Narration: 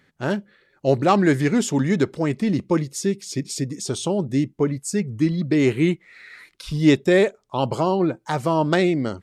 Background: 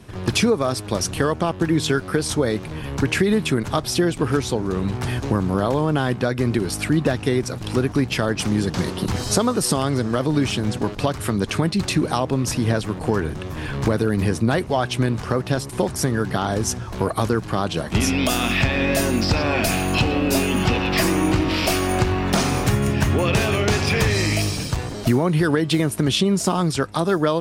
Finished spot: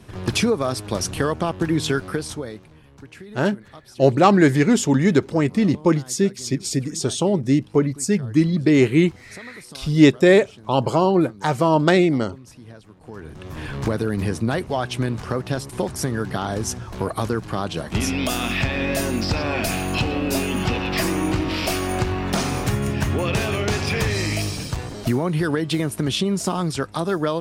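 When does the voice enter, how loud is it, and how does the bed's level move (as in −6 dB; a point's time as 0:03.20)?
3.15 s, +3.0 dB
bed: 0:02.04 −1.5 dB
0:02.91 −22 dB
0:12.98 −22 dB
0:13.54 −3 dB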